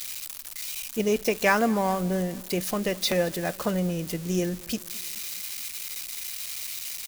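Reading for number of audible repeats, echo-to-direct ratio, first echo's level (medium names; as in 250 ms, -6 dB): 3, -21.5 dB, -23.0 dB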